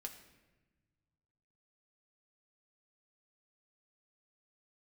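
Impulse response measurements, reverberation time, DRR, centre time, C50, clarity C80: 1.2 s, 2.5 dB, 16 ms, 10.0 dB, 11.5 dB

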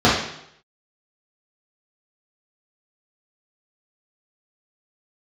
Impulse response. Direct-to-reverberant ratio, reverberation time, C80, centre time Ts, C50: -9.0 dB, 0.75 s, 7.0 dB, 47 ms, 2.5 dB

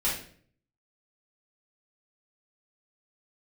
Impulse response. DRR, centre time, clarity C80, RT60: -9.0 dB, 39 ms, 9.0 dB, 0.50 s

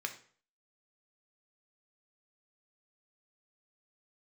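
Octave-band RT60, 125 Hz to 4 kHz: 0.50, 0.45, 0.50, 0.45, 0.45, 0.40 s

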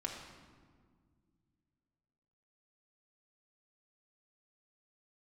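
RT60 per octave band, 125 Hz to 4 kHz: 3.1, 2.9, 2.0, 1.7, 1.3, 1.0 s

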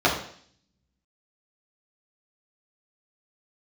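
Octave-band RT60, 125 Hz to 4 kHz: 0.90, 0.70, 0.60, 0.55, 0.60, 0.70 s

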